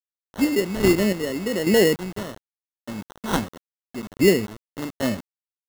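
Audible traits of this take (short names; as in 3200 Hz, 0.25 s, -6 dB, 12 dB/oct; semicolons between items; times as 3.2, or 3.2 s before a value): phasing stages 2, 0.84 Hz, lowest notch 700–1700 Hz; aliases and images of a low sample rate 2400 Hz, jitter 0%; chopped level 1.2 Hz, depth 65%, duty 35%; a quantiser's noise floor 8-bit, dither none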